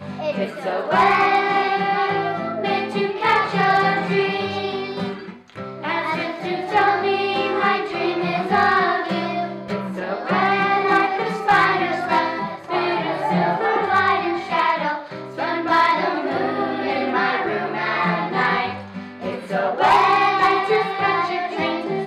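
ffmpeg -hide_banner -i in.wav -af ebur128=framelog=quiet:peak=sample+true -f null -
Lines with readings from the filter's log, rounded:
Integrated loudness:
  I:         -20.0 LUFS
  Threshold: -30.1 LUFS
Loudness range:
  LRA:         2.9 LU
  Threshold: -40.3 LUFS
  LRA low:   -22.0 LUFS
  LRA high:  -19.1 LUFS
Sample peak:
  Peak:       -8.5 dBFS
True peak:
  Peak:       -8.4 dBFS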